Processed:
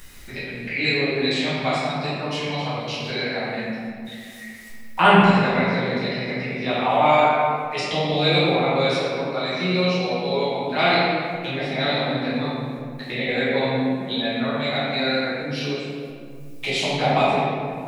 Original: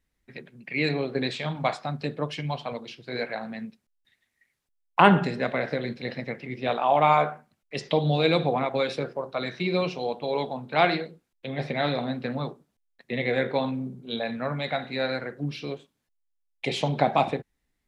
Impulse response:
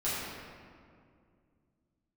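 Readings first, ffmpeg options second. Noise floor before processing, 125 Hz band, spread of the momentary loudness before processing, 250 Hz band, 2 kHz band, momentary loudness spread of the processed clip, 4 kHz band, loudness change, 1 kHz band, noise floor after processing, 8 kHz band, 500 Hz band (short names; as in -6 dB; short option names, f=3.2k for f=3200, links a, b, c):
-78 dBFS, +4.0 dB, 14 LU, +6.0 dB, +7.0 dB, 14 LU, +9.0 dB, +5.0 dB, +4.5 dB, -37 dBFS, n/a, +4.5 dB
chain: -filter_complex "[0:a]acompressor=mode=upward:threshold=-25dB:ratio=2.5,highshelf=f=2.3k:g=10.5[a];[1:a]atrim=start_sample=2205[b];[a][b]afir=irnorm=-1:irlink=0,volume=-5.5dB"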